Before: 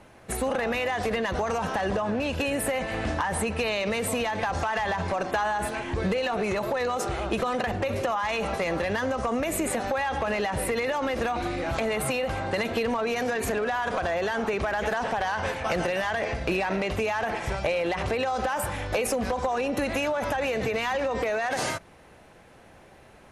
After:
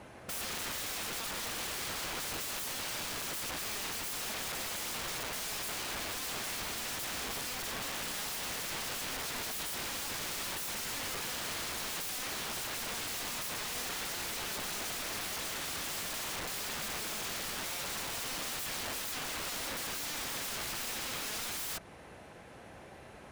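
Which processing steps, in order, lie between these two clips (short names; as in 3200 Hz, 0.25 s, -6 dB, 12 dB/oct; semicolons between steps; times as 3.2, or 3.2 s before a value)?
HPF 49 Hz 12 dB/oct; in parallel at -2.5 dB: compressor 12:1, threshold -34 dBFS, peak gain reduction 13 dB; on the sum: wrapped overs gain 29.5 dB; gain -4 dB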